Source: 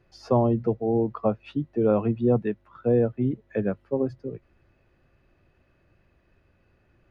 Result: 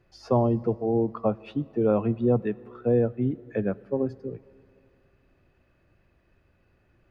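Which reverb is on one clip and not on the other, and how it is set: plate-style reverb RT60 2.6 s, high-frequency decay 0.9×, DRR 20 dB; gain -1 dB

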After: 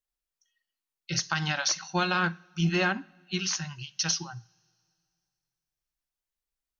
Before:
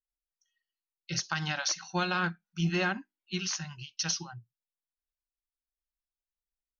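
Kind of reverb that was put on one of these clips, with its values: two-slope reverb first 0.51 s, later 2.5 s, from -18 dB, DRR 19 dB; gain +3.5 dB

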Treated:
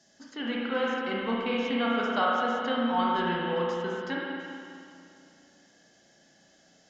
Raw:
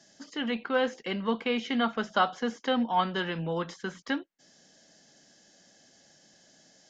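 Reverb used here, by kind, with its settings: spring tank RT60 2.5 s, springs 34/52 ms, chirp 65 ms, DRR -4.5 dB; gain -4.5 dB

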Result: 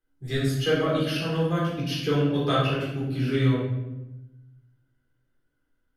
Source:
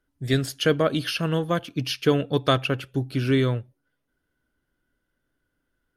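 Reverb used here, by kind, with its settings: shoebox room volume 380 m³, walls mixed, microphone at 3.9 m; gain -12.5 dB

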